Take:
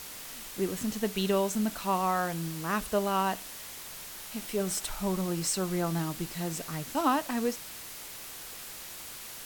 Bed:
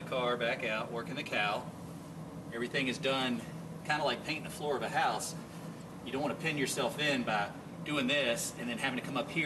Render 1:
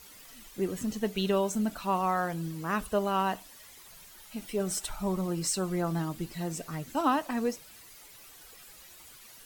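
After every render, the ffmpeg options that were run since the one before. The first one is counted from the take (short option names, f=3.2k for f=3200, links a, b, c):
-af "afftdn=nr=12:nf=-44"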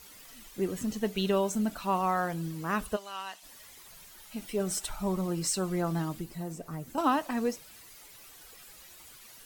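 -filter_complex "[0:a]asplit=3[a][b][c];[a]afade=t=out:st=2.95:d=0.02[d];[b]bandpass=f=5.1k:t=q:w=0.69,afade=t=in:st=2.95:d=0.02,afade=t=out:st=3.42:d=0.02[e];[c]afade=t=in:st=3.42:d=0.02[f];[d][e][f]amix=inputs=3:normalize=0,asettb=1/sr,asplit=3[g][h][i];[g]atrim=end=6.194[j];[h]atrim=start=6.19:end=6.98,asetpts=PTS-STARTPTS,afade=t=in:d=0.004:c=qsin,afade=t=out:st=0.786:d=0.004:c=qsin,acrossover=split=1300|7000[k][l][m];[k]acompressor=threshold=-33dB:ratio=4[n];[l]acompressor=threshold=-59dB:ratio=4[o];[m]acompressor=threshold=-52dB:ratio=4[p];[n][o][p]amix=inputs=3:normalize=0[q];[i]atrim=start=6.976[r];[j][q]acrossfade=d=0.004:c1=hsin:c2=qsin[s];[s][r]acrossfade=d=0.004:c1=qsin:c2=hsin"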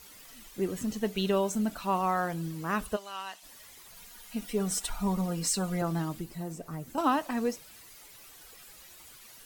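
-filter_complex "[0:a]asettb=1/sr,asplit=3[a][b][c];[a]atrim=end=3.964[d];[b]atrim=start=3.96:end=5.82,asetpts=PTS-STARTPTS,afade=t=in:d=0.004:c=qsin,afade=t=out:st=1.856:d=0.004:c=qsin,aecho=1:1:4.2:0.65,atrim=end_sample=82026[e];[c]atrim=start=5.816[f];[d][e]acrossfade=d=0.004:c1=hsin:c2=qsin[g];[g][f]acrossfade=d=0.004:c1=qsin:c2=hsin"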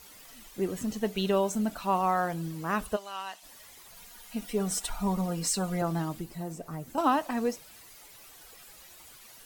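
-af "equalizer=f=730:w=1.5:g=3"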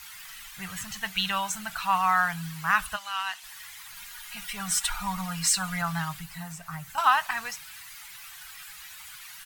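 -af "firequalizer=gain_entry='entry(170,0);entry(240,-24);entry(370,-29);entry(790,1);entry(1500,12);entry(5400,6)':delay=0.05:min_phase=1"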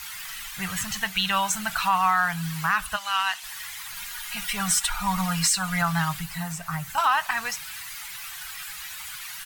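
-af "acontrast=85,alimiter=limit=-12dB:level=0:latency=1:release=348"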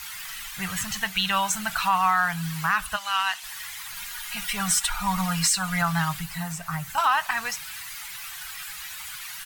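-af anull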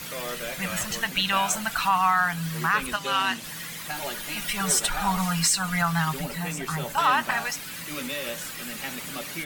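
-filter_complex "[1:a]volume=-2.5dB[a];[0:a][a]amix=inputs=2:normalize=0"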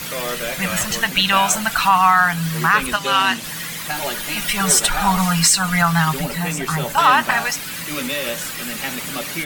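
-af "volume=8dB"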